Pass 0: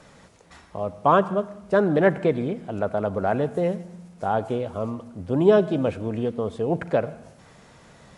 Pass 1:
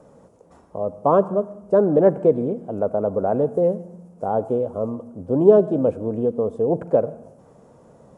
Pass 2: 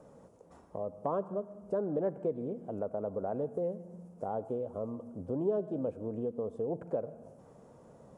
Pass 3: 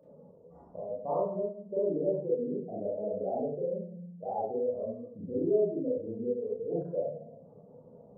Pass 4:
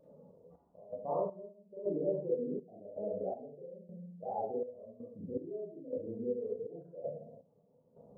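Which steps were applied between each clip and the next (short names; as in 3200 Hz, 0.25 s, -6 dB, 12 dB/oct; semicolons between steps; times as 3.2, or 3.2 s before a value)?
graphic EQ 125/250/500/1000/2000/4000 Hz +4/+6/+11/+4/-11/-11 dB; gain -6 dB
compressor 2:1, threshold -32 dBFS, peak gain reduction 13.5 dB; gain -6 dB
spectral contrast raised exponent 2; reverb RT60 0.55 s, pre-delay 27 ms, DRR -7 dB; gain -5.5 dB
step gate "xxx..xx...x" 81 bpm -12 dB; vibrato 0.54 Hz 11 cents; gain -3.5 dB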